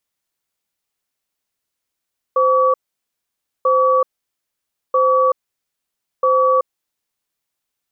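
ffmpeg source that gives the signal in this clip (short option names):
-f lavfi -i "aevalsrc='0.2*(sin(2*PI*518*t)+sin(2*PI*1140*t))*clip(min(mod(t,1.29),0.38-mod(t,1.29))/0.005,0,1)':d=4.7:s=44100"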